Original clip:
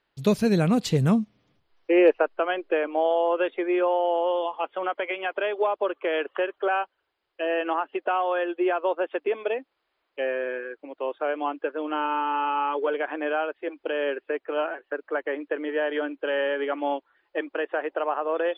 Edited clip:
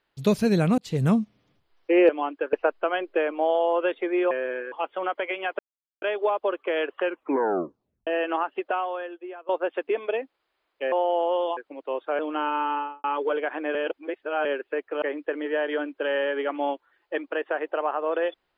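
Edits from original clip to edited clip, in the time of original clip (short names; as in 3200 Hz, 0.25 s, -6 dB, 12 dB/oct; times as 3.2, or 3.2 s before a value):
0.78–1.06 fade in
3.87–4.52 swap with 10.29–10.7
5.39 insert silence 0.43 s
6.4 tape stop 1.04 s
8.02–8.86 fade out quadratic, to -17 dB
11.32–11.76 move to 2.09
12.27–12.61 studio fade out
13.32–14.02 reverse
14.59–15.25 cut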